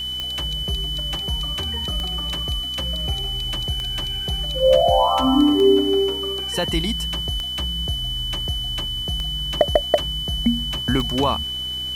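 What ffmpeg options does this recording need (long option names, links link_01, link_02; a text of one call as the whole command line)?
ffmpeg -i in.wav -af "adeclick=threshold=4,bandreject=frequency=63.4:width_type=h:width=4,bandreject=frequency=126.8:width_type=h:width=4,bandreject=frequency=190.2:width_type=h:width=4,bandreject=frequency=253.6:width_type=h:width=4,bandreject=frequency=317:width_type=h:width=4,bandreject=frequency=3000:width=30,afwtdn=0.005" out.wav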